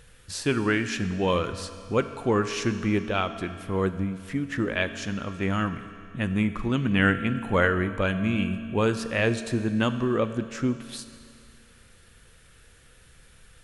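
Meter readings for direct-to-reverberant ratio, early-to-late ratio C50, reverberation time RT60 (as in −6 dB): 10.0 dB, 11.0 dB, 2.4 s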